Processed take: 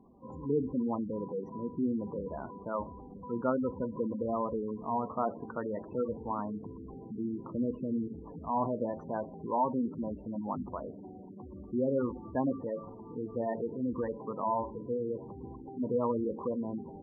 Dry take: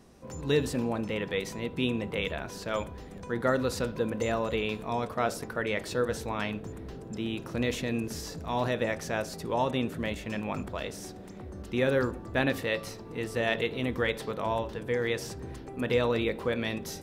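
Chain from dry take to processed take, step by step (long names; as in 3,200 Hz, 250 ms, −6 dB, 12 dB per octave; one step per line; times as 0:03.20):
graphic EQ with 10 bands 250 Hz +8 dB, 1,000 Hz +12 dB, 2,000 Hz −7 dB, 4,000 Hz −10 dB, 8,000 Hz −9 dB
gate on every frequency bin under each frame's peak −15 dB strong
level −8 dB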